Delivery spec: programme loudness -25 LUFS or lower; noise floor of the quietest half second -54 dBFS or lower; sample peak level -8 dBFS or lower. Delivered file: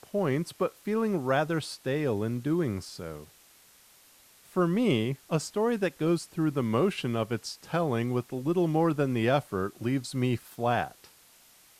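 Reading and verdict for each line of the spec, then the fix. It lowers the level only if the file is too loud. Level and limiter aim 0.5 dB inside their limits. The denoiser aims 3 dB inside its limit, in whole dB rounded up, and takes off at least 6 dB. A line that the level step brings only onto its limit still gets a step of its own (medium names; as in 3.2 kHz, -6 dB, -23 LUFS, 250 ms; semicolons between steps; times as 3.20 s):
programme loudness -29.0 LUFS: pass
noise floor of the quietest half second -58 dBFS: pass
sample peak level -12.5 dBFS: pass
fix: none needed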